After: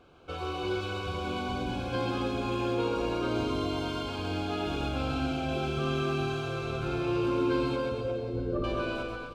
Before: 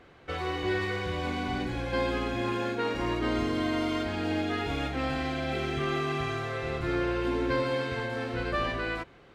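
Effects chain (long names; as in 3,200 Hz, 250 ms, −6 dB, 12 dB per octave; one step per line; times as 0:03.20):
0:07.76–0:08.64: spectral envelope exaggerated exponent 3
Butterworth band-reject 1,900 Hz, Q 2.7
bouncing-ball delay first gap 130 ms, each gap 0.9×, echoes 5
comb and all-pass reverb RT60 3.7 s, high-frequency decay 1×, pre-delay 60 ms, DRR 9 dB
level −3 dB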